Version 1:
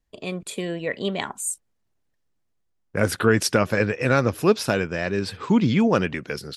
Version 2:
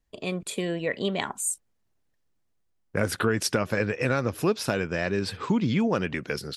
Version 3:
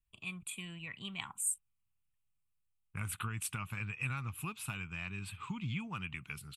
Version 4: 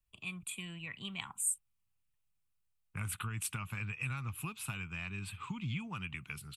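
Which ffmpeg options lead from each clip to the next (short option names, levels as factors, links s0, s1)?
-af "acompressor=threshold=0.0794:ratio=3"
-af "firequalizer=gain_entry='entry(130,0);entry(240,-13);entry(530,-29);entry(820,-9);entry(1200,-1);entry(1700,-12);entry(2500,5);entry(5200,-18);entry(8000,3)':delay=0.05:min_phase=1,volume=0.398"
-filter_complex "[0:a]acrossover=split=150|3000[s0][s1][s2];[s1]acompressor=threshold=0.01:ratio=6[s3];[s0][s3][s2]amix=inputs=3:normalize=0,volume=1.12"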